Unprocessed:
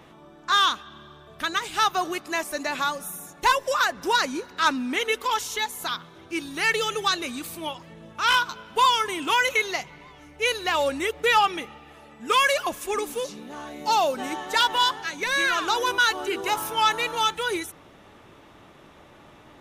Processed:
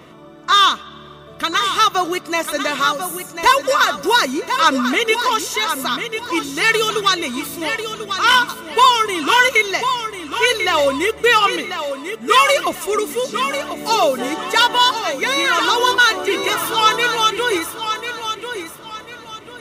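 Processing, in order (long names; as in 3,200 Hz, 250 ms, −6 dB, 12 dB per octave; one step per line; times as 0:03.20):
notch comb filter 830 Hz
on a send: feedback echo with a high-pass in the loop 1,043 ms, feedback 32%, high-pass 180 Hz, level −8 dB
on the sum: level +8.5 dB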